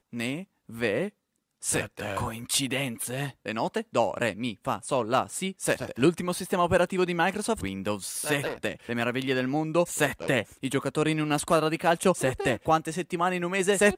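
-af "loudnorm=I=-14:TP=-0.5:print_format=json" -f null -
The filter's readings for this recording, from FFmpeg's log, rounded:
"input_i" : "-27.0",
"input_tp" : "-8.3",
"input_lra" : "4.8",
"input_thresh" : "-37.1",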